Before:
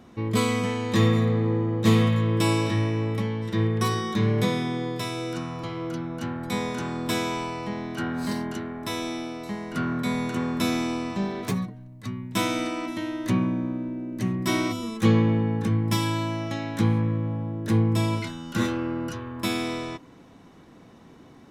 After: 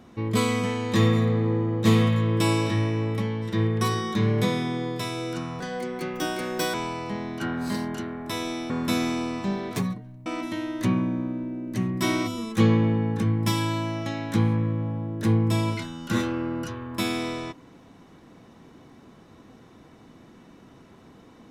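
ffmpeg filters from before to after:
-filter_complex "[0:a]asplit=5[a][b][c][d][e];[a]atrim=end=5.604[f];[b]atrim=start=5.6:end=7.31,asetpts=PTS-STARTPTS,asetrate=66150,aresample=44100[g];[c]atrim=start=7.306:end=9.272[h];[d]atrim=start=10.418:end=11.982[i];[e]atrim=start=12.708[j];[f][g]acrossfade=d=0.004:c1=hsin:c2=hsin[k];[k][h]acrossfade=d=0.004:c1=hsin:c2=hsin[l];[l][i]acrossfade=d=0.004:c1=hsin:c2=hsin[m];[m][j]acrossfade=d=0.004:c1=hsin:c2=hsin"

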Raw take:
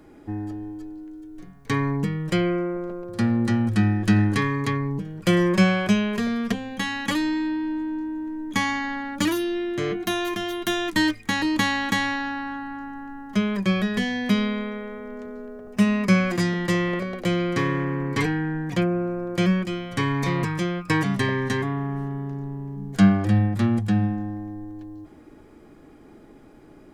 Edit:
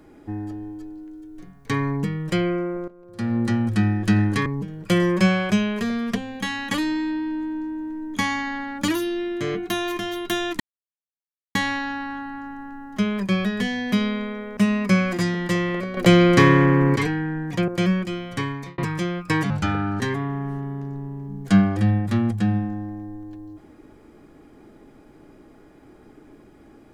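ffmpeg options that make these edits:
-filter_complex "[0:a]asplit=12[a][b][c][d][e][f][g][h][i][j][k][l];[a]atrim=end=2.88,asetpts=PTS-STARTPTS,afade=t=out:st=2.876:d=0.004:c=hsin:silence=0.158489[m];[b]atrim=start=2.88:end=4.462,asetpts=PTS-STARTPTS,afade=t=in:d=0.49:c=qua:silence=0.158489[n];[c]atrim=start=4.828:end=10.97,asetpts=PTS-STARTPTS,afade=t=out:st=6.138:d=0.004:c=hsin[o];[d]atrim=start=10.97:end=11.92,asetpts=PTS-STARTPTS,volume=0[p];[e]atrim=start=11.92:end=14.942,asetpts=PTS-STARTPTS,afade=t=in:d=0.004:c=hsin[q];[f]atrim=start=15.758:end=17.162[r];[g]atrim=start=17.158:end=18.152,asetpts=PTS-STARTPTS,volume=9.5dB[s];[h]atrim=start=18.148:end=18.872[t];[i]atrim=start=19.278:end=20.38,asetpts=PTS-STARTPTS,afade=t=out:st=0.622:d=0.48[u];[j]atrim=start=20.38:end=21.104,asetpts=PTS-STARTPTS,afade=t=in:d=0.004:c=hsin[v];[k]atrim=start=21.1:end=21.48,asetpts=PTS-STARTPTS,asetrate=33516,aresample=44100[w];[l]atrim=start=21.476[x];[m][n]concat=n=2:v=0:a=1[y];[o][p][q]concat=n=3:v=0:a=1[z];[y][z]acrossfade=d=0.004:c1=hsin:c2=hsin[aa];[aa][r]acrossfade=d=0.004:c1=hsin:c2=hsin[ab];[ab][s]acrossfade=d=0.004:c1=hsin:c2=hsin[ac];[ac][t]acrossfade=d=0.004:c1=hsin:c2=hsin[ad];[u][v]concat=n=2:v=0:a=1[ae];[ad][ae]acrossfade=d=0.004:c1=hsin:c2=hsin[af];[af][w]acrossfade=d=0.004:c1=hsin:c2=hsin[ag];[ag][x]acrossfade=d=0.004:c1=hsin:c2=hsin"

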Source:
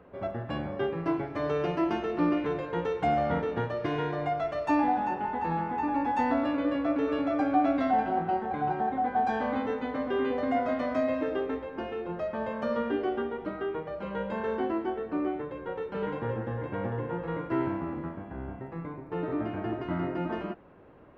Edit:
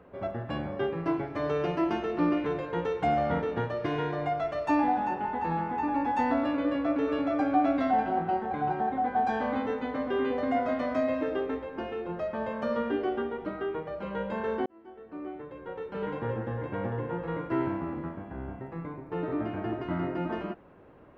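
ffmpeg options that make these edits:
-filter_complex "[0:a]asplit=2[a][b];[a]atrim=end=14.66,asetpts=PTS-STARTPTS,afade=t=out:st=14.656:d=0.004:c=hsin[c];[b]atrim=start=14.66,asetpts=PTS-STARTPTS,afade=t=in:d=1.6[d];[c][d]concat=n=2:v=0:a=1"

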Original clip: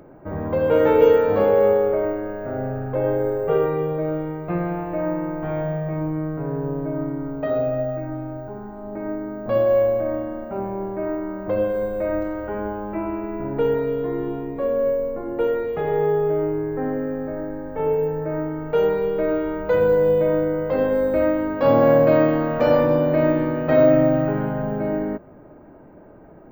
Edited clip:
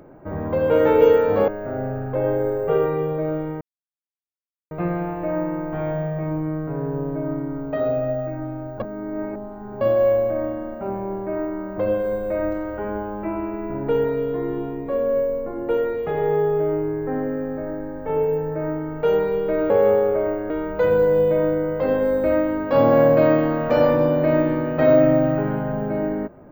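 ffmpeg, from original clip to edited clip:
-filter_complex "[0:a]asplit=7[a][b][c][d][e][f][g];[a]atrim=end=1.482[h];[b]atrim=start=2.278:end=4.41,asetpts=PTS-STARTPTS,afade=t=out:st=2.128:d=0.004:c=hsin,apad=pad_dur=1.1[i];[c]atrim=start=4.41:end=8.502,asetpts=PTS-STARTPTS,afade=t=in:d=0.004:c=hsin[j];[d]atrim=start=8.498:end=9.512,asetpts=PTS-STARTPTS,areverse[k];[e]atrim=start=9.508:end=19.402[l];[f]atrim=start=1.478:end=2.282[m];[g]atrim=start=19.398[n];[i][j]concat=n=2:v=0:a=1[o];[h][o]acrossfade=d=0.004:c1=hsin:c2=hsin[p];[p][k]acrossfade=d=0.004:c1=hsin:c2=hsin[q];[q][l]acrossfade=d=0.004:c1=hsin:c2=hsin[r];[r][m]acrossfade=d=0.004:c1=hsin:c2=hsin[s];[s][n]acrossfade=d=0.004:c1=hsin:c2=hsin"

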